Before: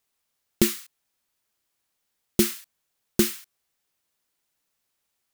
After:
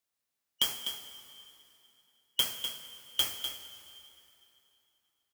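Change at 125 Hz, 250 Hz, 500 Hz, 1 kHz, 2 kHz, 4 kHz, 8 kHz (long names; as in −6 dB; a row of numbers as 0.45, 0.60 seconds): −22.5, −29.5, −21.5, −2.0, −7.0, +5.5, −7.5 decibels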